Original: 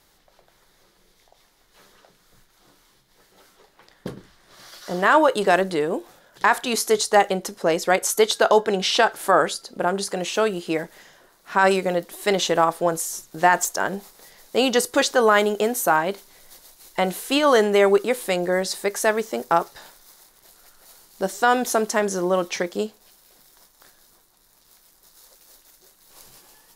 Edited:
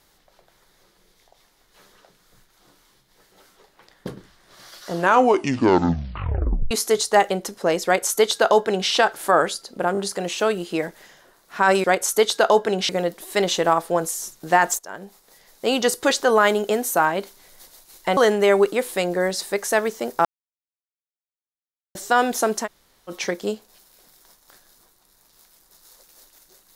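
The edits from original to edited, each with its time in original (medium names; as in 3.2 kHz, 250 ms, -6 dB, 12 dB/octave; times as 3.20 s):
4.88 s: tape stop 1.83 s
7.85–8.90 s: copy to 11.80 s
9.93 s: stutter 0.02 s, 3 plays
13.70–14.83 s: fade in, from -16 dB
17.08–17.49 s: delete
19.57–21.27 s: mute
21.97–22.42 s: room tone, crossfade 0.06 s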